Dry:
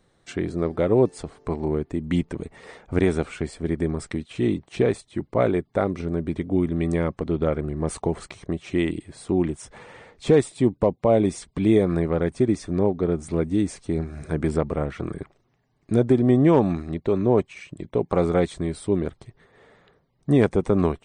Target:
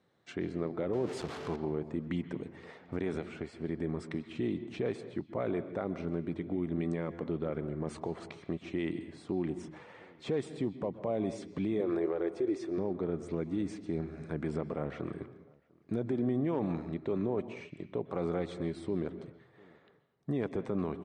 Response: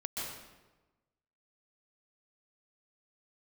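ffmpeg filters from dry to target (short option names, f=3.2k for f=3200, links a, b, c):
-filter_complex "[0:a]asettb=1/sr,asplit=3[a][b][c];[a]atrim=end=0.934[d];[b]atrim=start=0.93:end=1.56,asetpts=PTS-STARTPTS,afade=t=in:d=0.004:c=qsin,afade=t=out:st=0.626:d=0.004:c=qsin,aeval=exprs='val(0)+0.5*0.0376*sgn(val(0))':c=same[e];[c]atrim=start=1.556[f];[d][e]acrossfade=d=0.004:c1=hsin:c2=qsin[g];[g][f]acrossfade=d=0.004:c1=qsin:c2=hsin,asettb=1/sr,asplit=3[h][i][j];[h]atrim=end=3.164[k];[i]atrim=start=3.16:end=3.58,asetpts=PTS-STARTPTS,afade=t=in:d=0.004:c=qsin,afade=t=out:st=0.416:d=0.004:c=qsin,acrossover=split=720|2100[l][m][n];[l]acompressor=threshold=-27dB:ratio=4[o];[m]acompressor=threshold=-42dB:ratio=4[p];[n]acompressor=threshold=-44dB:ratio=4[q];[o][p][q]amix=inputs=3:normalize=0[r];[j]atrim=start=3.576[s];[k][r]acrossfade=d=0.004:c1=hsin:c2=qsin[t];[t][s]acrossfade=d=0.004:c1=qsin:c2=hsin,asettb=1/sr,asplit=3[u][v][w];[u]atrim=end=11.804[x];[v]atrim=start=11.8:end=12.78,asetpts=PTS-STARTPTS,afade=t=in:d=0.004:c=qsin,afade=t=out:st=0.976:d=0.004:c=qsin,lowshelf=f=270:t=q:w=3:g=-9[y];[w]atrim=start=12.776[z];[x][y]acrossfade=d=0.004:c1=hsin:c2=qsin[aa];[aa][z]acrossfade=d=0.004:c1=qsin:c2=hsin,alimiter=limit=-16.5dB:level=0:latency=1:release=38,highpass=120,lowpass=5.3k,asplit=2[ab][ac];[ac]adelay=699.7,volume=-27dB,highshelf=f=4k:g=-15.7[ad];[ab][ad]amix=inputs=2:normalize=0,asplit=2[ae][af];[1:a]atrim=start_sample=2205,afade=t=out:st=0.35:d=0.01,atrim=end_sample=15876,lowpass=4.3k[ag];[af][ag]afir=irnorm=-1:irlink=0,volume=-11.5dB[ah];[ae][ah]amix=inputs=2:normalize=0,volume=-9dB"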